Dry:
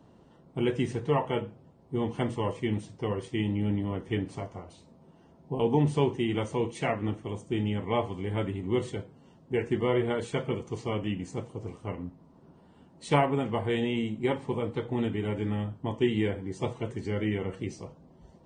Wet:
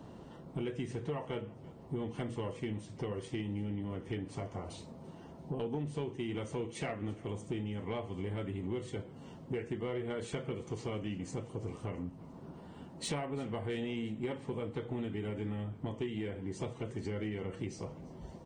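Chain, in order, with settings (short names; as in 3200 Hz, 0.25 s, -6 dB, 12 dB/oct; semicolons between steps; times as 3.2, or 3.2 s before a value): dynamic EQ 920 Hz, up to -5 dB, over -46 dBFS, Q 3.1; compressor 6:1, threshold -41 dBFS, peak gain reduction 20 dB; soft clip -33 dBFS, distortion -21 dB; on a send: feedback echo 0.339 s, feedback 53%, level -22 dB; on the sum: gain +6.5 dB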